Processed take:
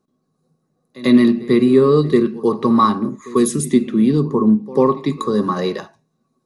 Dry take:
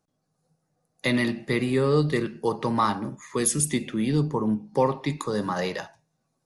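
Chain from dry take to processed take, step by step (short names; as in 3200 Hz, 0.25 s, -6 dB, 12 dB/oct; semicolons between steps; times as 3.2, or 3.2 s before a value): small resonant body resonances 240/370/1100/3900 Hz, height 15 dB, ringing for 40 ms; reverse echo 94 ms -19.5 dB; gain -1 dB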